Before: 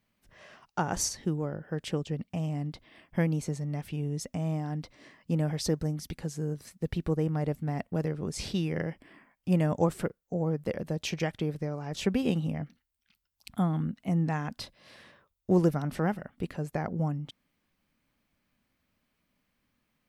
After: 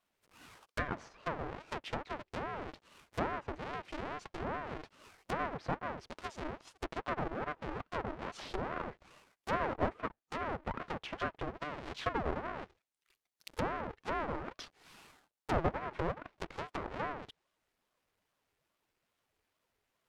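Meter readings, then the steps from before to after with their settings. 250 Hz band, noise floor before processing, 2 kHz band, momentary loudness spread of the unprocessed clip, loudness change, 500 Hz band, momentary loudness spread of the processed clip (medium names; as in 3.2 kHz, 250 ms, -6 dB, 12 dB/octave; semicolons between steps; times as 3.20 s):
-13.0 dB, -79 dBFS, +0.5 dB, 10 LU, -8.0 dB, -6.5 dB, 12 LU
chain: square wave that keeps the level; high-pass 390 Hz 6 dB/octave; low-pass that closes with the level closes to 1.3 kHz, closed at -26.5 dBFS; ring modulator with a swept carrier 530 Hz, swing 70%, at 2.4 Hz; trim -4 dB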